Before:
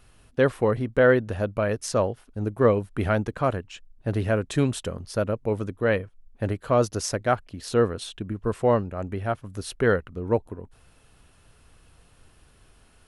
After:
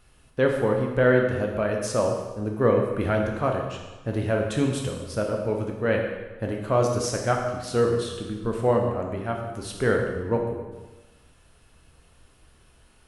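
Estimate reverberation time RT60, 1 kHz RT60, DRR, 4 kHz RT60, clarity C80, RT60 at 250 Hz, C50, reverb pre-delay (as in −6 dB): 1.2 s, 1.2 s, 1.0 dB, 1.1 s, 5.5 dB, 1.2 s, 4.0 dB, 7 ms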